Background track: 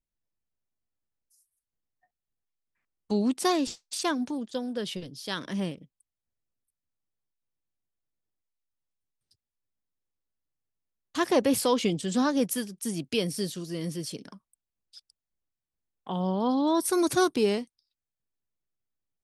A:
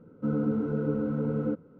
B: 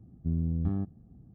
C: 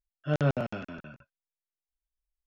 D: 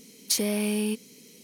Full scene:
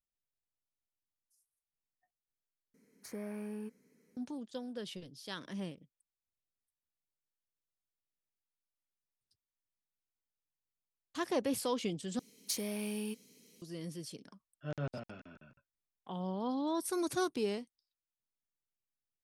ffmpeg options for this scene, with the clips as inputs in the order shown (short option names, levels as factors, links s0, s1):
-filter_complex "[4:a]asplit=2[s0][s1];[0:a]volume=0.316[s2];[s0]highshelf=f=2300:t=q:w=3:g=-11.5[s3];[s2]asplit=3[s4][s5][s6];[s4]atrim=end=2.744[s7];[s3]atrim=end=1.43,asetpts=PTS-STARTPTS,volume=0.178[s8];[s5]atrim=start=4.166:end=12.194[s9];[s1]atrim=end=1.43,asetpts=PTS-STARTPTS,volume=0.266[s10];[s6]atrim=start=13.616[s11];[3:a]atrim=end=2.46,asetpts=PTS-STARTPTS,volume=0.237,afade=t=in:d=0.004:c=hsin,afade=t=out:st=2.456:d=0.004:c=hsin,adelay=14370[s12];[s7][s8]acrossfade=d=0.004:c1=hsin:c2=hsin[s13];[s13][s9]acrossfade=d=0.004:c1=hsin:c2=hsin[s14];[s14][s10]acrossfade=d=0.004:c1=hsin:c2=hsin[s15];[s15][s11]acrossfade=d=0.004:c1=hsin:c2=hsin[s16];[s16][s12]amix=inputs=2:normalize=0"